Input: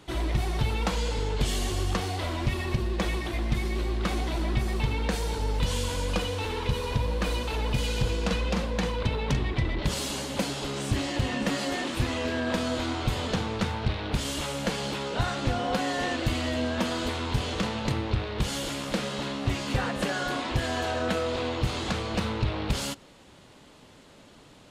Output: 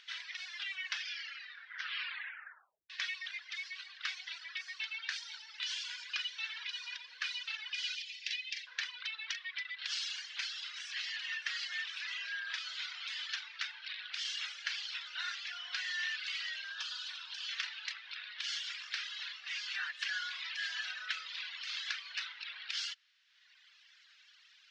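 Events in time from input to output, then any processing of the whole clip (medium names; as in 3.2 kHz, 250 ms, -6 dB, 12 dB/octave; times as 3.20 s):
0.41 s: tape stop 2.49 s
7.95–8.67 s: steep high-pass 1.9 kHz 48 dB/octave
11.37–12.69 s: treble shelf 4.3 kHz -2.5 dB
16.72–17.49 s: peaking EQ 2.1 kHz -11.5 dB 0.41 oct
whole clip: elliptic band-pass 1.6–5.6 kHz, stop band 70 dB; reverb removal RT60 1.5 s; upward compressor, threshold -59 dBFS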